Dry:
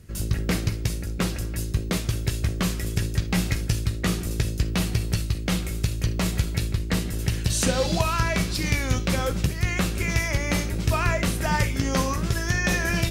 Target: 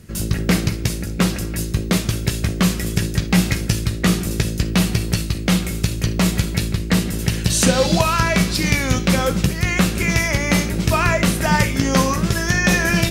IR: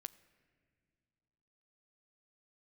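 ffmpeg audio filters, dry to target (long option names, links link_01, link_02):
-filter_complex "[0:a]equalizer=frequency=190:width=1.6:gain=6.5,asplit=2[link_01][link_02];[1:a]atrim=start_sample=2205,lowshelf=frequency=190:gain=-9.5[link_03];[link_02][link_03]afir=irnorm=-1:irlink=0,volume=15dB[link_04];[link_01][link_04]amix=inputs=2:normalize=0,volume=-5dB"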